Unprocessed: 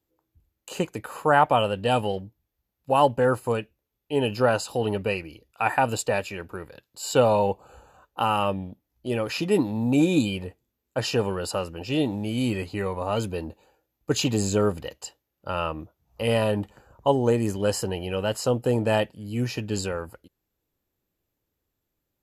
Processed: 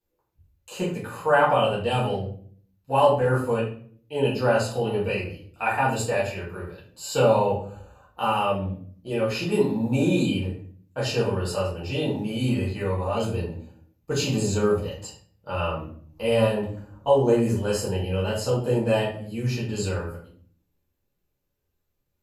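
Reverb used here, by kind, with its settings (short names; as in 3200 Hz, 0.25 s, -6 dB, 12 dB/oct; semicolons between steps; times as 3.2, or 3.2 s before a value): shoebox room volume 58 m³, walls mixed, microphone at 1.6 m; gain -8.5 dB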